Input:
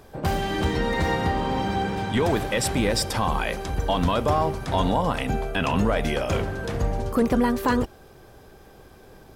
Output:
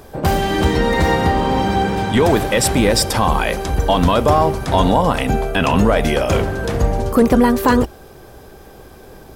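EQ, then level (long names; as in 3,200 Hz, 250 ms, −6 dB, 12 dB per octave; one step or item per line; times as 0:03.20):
RIAA equalisation recording
spectral tilt −3.5 dB per octave
parametric band 61 Hz +5.5 dB 0.43 octaves
+8.0 dB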